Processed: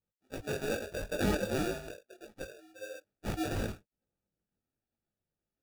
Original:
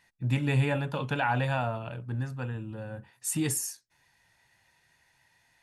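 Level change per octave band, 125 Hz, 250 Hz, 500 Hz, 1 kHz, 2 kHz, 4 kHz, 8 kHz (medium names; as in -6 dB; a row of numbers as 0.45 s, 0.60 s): -12.5 dB, -3.5 dB, -0.5 dB, -10.0 dB, -6.0 dB, -2.5 dB, -11.5 dB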